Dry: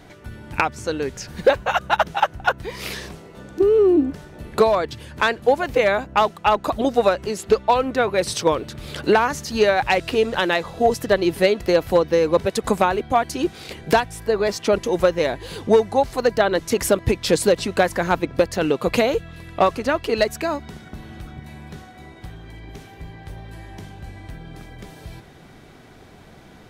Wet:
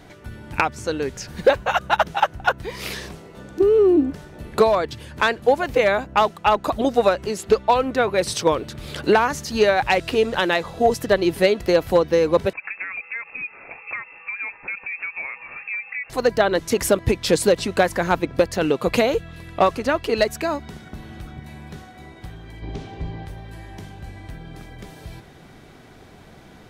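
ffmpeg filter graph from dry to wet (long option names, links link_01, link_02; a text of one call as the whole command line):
ffmpeg -i in.wav -filter_complex "[0:a]asettb=1/sr,asplit=3[link_01][link_02][link_03];[link_01]atrim=end=12.534[link_04];[link_02]atrim=start=12.53:end=16.1,asetpts=PTS-STARTPTS,afade=type=in:duration=0.004:curve=qsin,afade=type=out:start_time=3.566:duration=0.004:curve=qsin,highpass=frequency=240:poles=1,acompressor=threshold=-27dB:ratio=5:attack=3.2:release=140:knee=1:detection=peak,lowpass=frequency=2400:width_type=q:width=0.5098,lowpass=frequency=2400:width_type=q:width=0.6013,lowpass=frequency=2400:width_type=q:width=0.9,lowpass=frequency=2400:width_type=q:width=2.563,afreqshift=-2800[link_05];[link_03]atrim=start=16.096[link_06];[link_04][link_05]acrossfade=duration=0.004:curve1=hsin:curve2=qsin[link_07];[link_07][link_06]acrossfade=duration=0.004:curve1=qsin:curve2=hsin,asettb=1/sr,asplit=3[link_08][link_09][link_10];[link_08]atrim=end=22.624[link_11];[link_09]atrim=start=22.62:end=23.26,asetpts=PTS-STARTPTS,afade=type=in:duration=0.004:curve=qsin,afade=type=out:start_time=0.636:duration=0.004:curve=qsin,equalizer=frequency=1800:width=0.98:gain=-7,acontrast=89,lowpass=4400[link_12];[link_10]atrim=start=23.256[link_13];[link_11][link_12]acrossfade=duration=0.004:curve1=hsin:curve2=qsin[link_14];[link_14][link_13]acrossfade=duration=0.004:curve1=qsin:curve2=hsin" out.wav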